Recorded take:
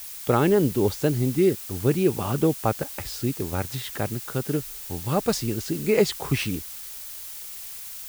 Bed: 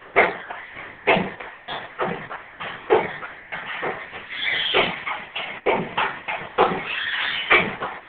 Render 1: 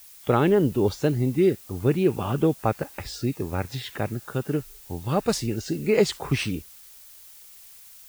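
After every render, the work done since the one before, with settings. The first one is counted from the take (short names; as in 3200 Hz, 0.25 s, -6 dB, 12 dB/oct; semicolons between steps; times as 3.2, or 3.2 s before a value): noise print and reduce 10 dB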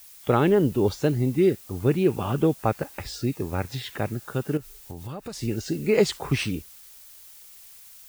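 4.57–5.43 compressor 5:1, threshold -33 dBFS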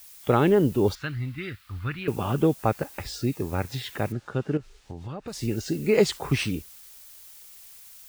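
0.95–2.08 EQ curve 100 Hz 0 dB, 190 Hz -14 dB, 280 Hz -13 dB, 400 Hz -22 dB, 830 Hz -12 dB, 1300 Hz +6 dB, 4300 Hz -2 dB, 6200 Hz -14 dB; 4.12–5.28 air absorption 120 m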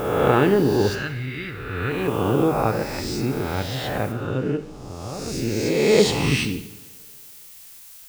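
spectral swells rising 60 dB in 1.50 s; two-slope reverb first 0.75 s, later 2.4 s, from -20 dB, DRR 7.5 dB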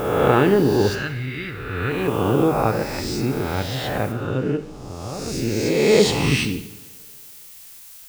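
gain +1.5 dB; limiter -3 dBFS, peak gain reduction 1.5 dB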